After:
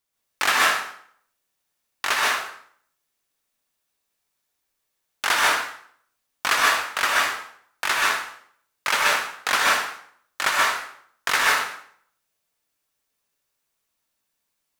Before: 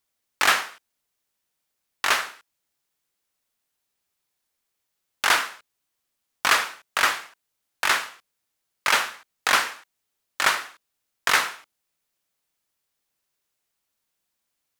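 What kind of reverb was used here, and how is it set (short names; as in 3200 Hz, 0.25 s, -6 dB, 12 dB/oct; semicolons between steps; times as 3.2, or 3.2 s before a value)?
plate-style reverb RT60 0.6 s, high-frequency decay 0.8×, pre-delay 0.115 s, DRR -3.5 dB; gain -2.5 dB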